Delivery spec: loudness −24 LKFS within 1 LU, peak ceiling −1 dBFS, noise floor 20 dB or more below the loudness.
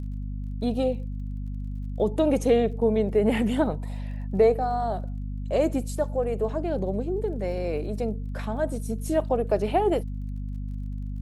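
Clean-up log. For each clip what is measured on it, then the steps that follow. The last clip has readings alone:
crackle rate 33 per second; mains hum 50 Hz; hum harmonics up to 250 Hz; level of the hum −29 dBFS; integrated loudness −27.0 LKFS; sample peak −9.5 dBFS; target loudness −24.0 LKFS
→ click removal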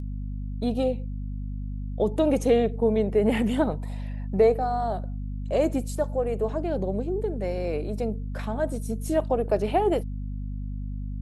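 crackle rate 0.089 per second; mains hum 50 Hz; hum harmonics up to 250 Hz; level of the hum −29 dBFS
→ hum removal 50 Hz, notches 5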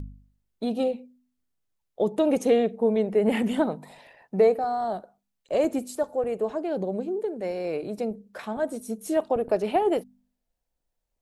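mains hum none found; integrated loudness −26.5 LKFS; sample peak −9.5 dBFS; target loudness −24.0 LKFS
→ level +2.5 dB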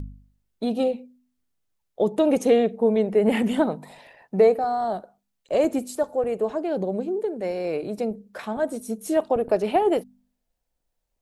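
integrated loudness −24.0 LKFS; sample peak −7.0 dBFS; background noise floor −77 dBFS

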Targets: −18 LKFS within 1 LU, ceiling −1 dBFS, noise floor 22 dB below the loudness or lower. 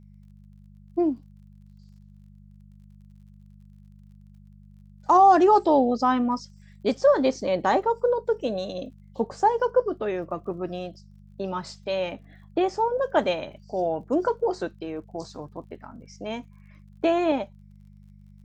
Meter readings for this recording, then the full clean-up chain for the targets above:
crackle rate 36 per second; mains hum 50 Hz; hum harmonics up to 200 Hz; level of the hum −47 dBFS; integrated loudness −24.5 LKFS; sample peak −8.0 dBFS; target loudness −18.0 LKFS
→ click removal
hum removal 50 Hz, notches 4
level +6.5 dB

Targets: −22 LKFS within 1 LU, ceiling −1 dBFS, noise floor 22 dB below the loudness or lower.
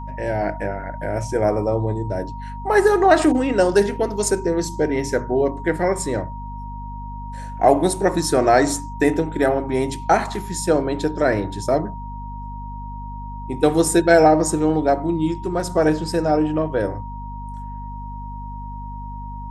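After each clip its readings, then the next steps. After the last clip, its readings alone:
mains hum 50 Hz; hum harmonics up to 250 Hz; level of the hum −30 dBFS; interfering tone 940 Hz; level of the tone −34 dBFS; integrated loudness −19.5 LKFS; sample peak −1.5 dBFS; target loudness −22.0 LKFS
→ hum removal 50 Hz, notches 5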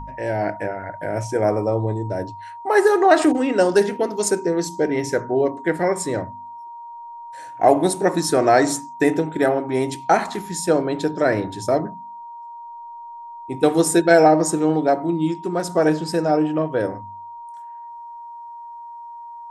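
mains hum none found; interfering tone 940 Hz; level of the tone −34 dBFS
→ notch filter 940 Hz, Q 30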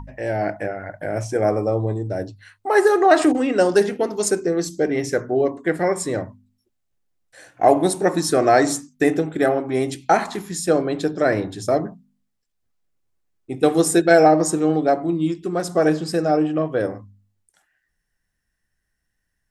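interfering tone none found; integrated loudness −20.0 LKFS; sample peak −1.5 dBFS; target loudness −22.0 LKFS
→ level −2 dB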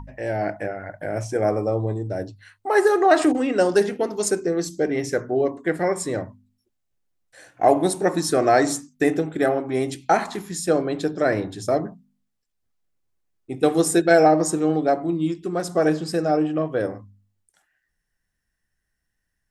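integrated loudness −22.0 LKFS; sample peak −3.5 dBFS; background noise floor −77 dBFS

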